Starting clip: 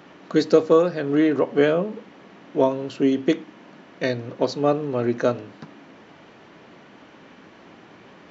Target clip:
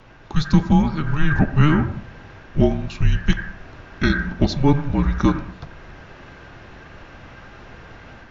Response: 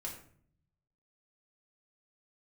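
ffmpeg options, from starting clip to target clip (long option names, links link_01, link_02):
-filter_complex "[0:a]dynaudnorm=framelen=210:gausssize=3:maxgain=6dB,asplit=2[link_01][link_02];[link_02]lowpass=frequency=1900:width_type=q:width=13[link_03];[1:a]atrim=start_sample=2205,adelay=87[link_04];[link_03][link_04]afir=irnorm=-1:irlink=0,volume=-15dB[link_05];[link_01][link_05]amix=inputs=2:normalize=0,afreqshift=-300"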